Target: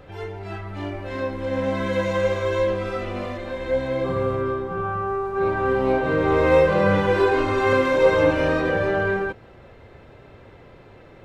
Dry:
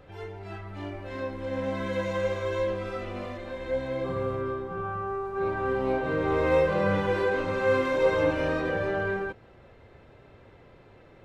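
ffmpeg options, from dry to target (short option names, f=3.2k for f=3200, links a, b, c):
-filter_complex "[0:a]asettb=1/sr,asplit=3[a][b][c];[a]atrim=end=7.194[d];[b]atrim=start=7.19:end=7.73,asetpts=PTS-STARTPTS,afade=t=in:d=0.004:c=qsin,afade=t=out:st=0.536:d=0.004:c=qsin,aecho=1:1:2.8:0.75,atrim=end_sample=23814[e];[c]atrim=start=7.726[f];[d][e]acrossfade=d=0.004:c1=hsin:c2=qsin[g];[g][f]acrossfade=d=0.004:c1=qsin:c2=hsin,volume=6.5dB"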